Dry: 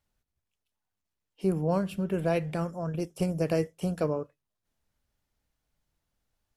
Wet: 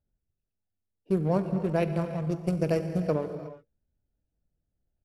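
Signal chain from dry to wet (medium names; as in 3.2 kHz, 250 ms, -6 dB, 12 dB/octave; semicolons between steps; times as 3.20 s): local Wiener filter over 41 samples; gated-style reverb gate 500 ms flat, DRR 7.5 dB; tempo 1.3×; trim +1.5 dB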